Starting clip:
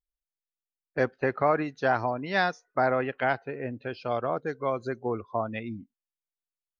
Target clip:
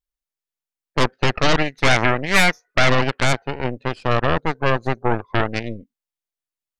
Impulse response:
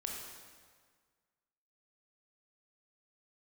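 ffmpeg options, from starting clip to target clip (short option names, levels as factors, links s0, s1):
-filter_complex "[0:a]aeval=exprs='0.282*(cos(1*acos(clip(val(0)/0.282,-1,1)))-cos(1*PI/2))+0.141*(cos(8*acos(clip(val(0)/0.282,-1,1)))-cos(8*PI/2))':c=same,asettb=1/sr,asplit=3[s0][s1][s2];[s0]atrim=end=1.594[s3];[s1]atrim=start=1.59:end=2.89,asetpts=PTS-STARTPTS,afade=t=in:d=0.004:c=qsin,afade=t=out:st=1.296:d=0.004:c=qsin,equalizer=f=2100:t=o:w=0.52:g=8.5[s4];[s2]atrim=start=2.886[s5];[s3][s4]acrossfade=d=0.004:c1=hsin:c2=qsin[s6];[s6][s5]acrossfade=d=0.004:c1=qsin:c2=hsin,volume=1.26"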